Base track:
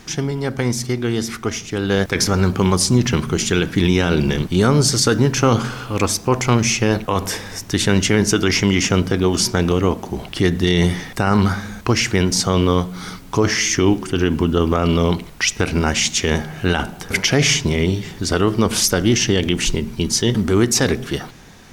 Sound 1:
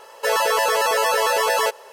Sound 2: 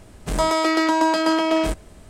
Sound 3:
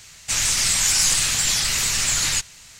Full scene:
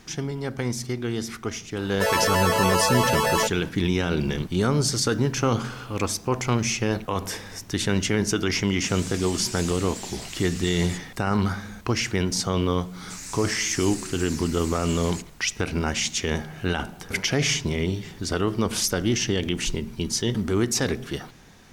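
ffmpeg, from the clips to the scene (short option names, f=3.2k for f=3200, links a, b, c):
-filter_complex "[3:a]asplit=2[a][b];[0:a]volume=-7.5dB[c];[b]equalizer=f=3.2k:t=o:w=0.38:g=-14[d];[1:a]atrim=end=1.92,asetpts=PTS-STARTPTS,volume=-3dB,afade=t=in:d=0.004:c=hsin,afade=t=out:st=1.916:d=0.004:c=hsin,adelay=1770[e];[a]atrim=end=2.79,asetpts=PTS-STARTPTS,volume=-17.5dB,afade=t=in:d=0.004:c=hsin,afade=t=out:st=2.786:d=0.004:c=hsin,adelay=8570[f];[d]atrim=end=2.79,asetpts=PTS-STARTPTS,volume=-16.5dB,afade=t=in:d=0.004:c=hsin,afade=t=out:st=2.786:d=0.004:c=hsin,adelay=12810[g];[c][e][f][g]amix=inputs=4:normalize=0"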